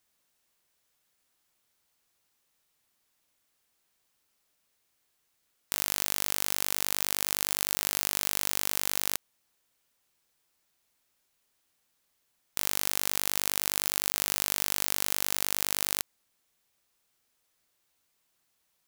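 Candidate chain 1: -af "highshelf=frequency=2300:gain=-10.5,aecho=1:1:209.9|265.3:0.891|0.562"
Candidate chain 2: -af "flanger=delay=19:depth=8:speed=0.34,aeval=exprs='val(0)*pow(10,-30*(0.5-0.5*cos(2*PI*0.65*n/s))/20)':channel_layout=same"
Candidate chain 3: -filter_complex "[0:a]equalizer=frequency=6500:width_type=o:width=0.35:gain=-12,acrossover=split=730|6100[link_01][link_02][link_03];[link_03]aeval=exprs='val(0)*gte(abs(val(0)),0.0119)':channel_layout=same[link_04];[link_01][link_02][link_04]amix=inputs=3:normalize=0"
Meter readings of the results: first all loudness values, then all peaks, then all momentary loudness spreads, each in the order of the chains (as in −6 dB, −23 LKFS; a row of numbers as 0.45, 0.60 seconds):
−34.0, −36.5, −29.0 LKFS; −10.0, −6.0, −6.5 dBFS; 6, 21, 3 LU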